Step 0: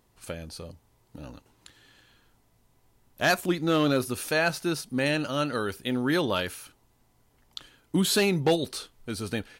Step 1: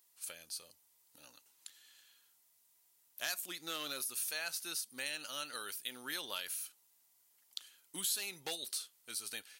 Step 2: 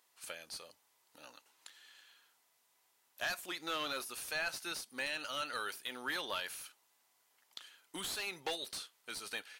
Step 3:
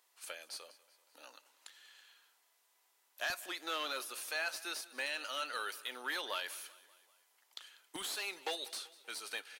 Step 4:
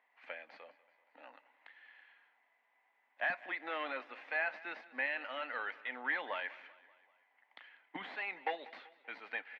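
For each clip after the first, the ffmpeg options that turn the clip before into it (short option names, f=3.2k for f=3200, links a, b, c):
-af "aderivative,acompressor=threshold=-40dB:ratio=2.5,volume=2.5dB"
-filter_complex "[0:a]asplit=2[a][b];[b]highpass=f=720:p=1,volume=16dB,asoftclip=type=tanh:threshold=-20.5dB[c];[a][c]amix=inputs=2:normalize=0,lowpass=f=1.3k:p=1,volume=-6dB,volume=1dB"
-filter_complex "[0:a]acrossover=split=270[a][b];[a]acrusher=bits=7:mix=0:aa=0.000001[c];[b]aecho=1:1:193|386|579|772:0.1|0.055|0.0303|0.0166[d];[c][d]amix=inputs=2:normalize=0"
-af "highpass=180,equalizer=f=180:t=q:w=4:g=6,equalizer=f=260:t=q:w=4:g=5,equalizer=f=380:t=q:w=4:g=-9,equalizer=f=780:t=q:w=4:g=5,equalizer=f=1.3k:t=q:w=4:g=-6,equalizer=f=2k:t=q:w=4:g=9,lowpass=f=2.3k:w=0.5412,lowpass=f=2.3k:w=1.3066,volume=2dB"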